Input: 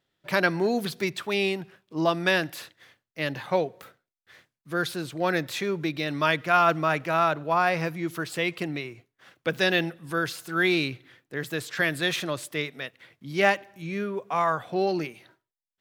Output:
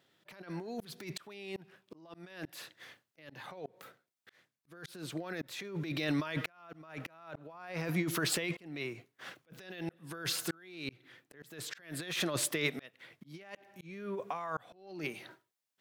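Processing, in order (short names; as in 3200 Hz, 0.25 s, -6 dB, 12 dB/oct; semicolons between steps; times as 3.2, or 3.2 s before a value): HPF 130 Hz 12 dB/oct; negative-ratio compressor -34 dBFS, ratio -1; auto swell 0.694 s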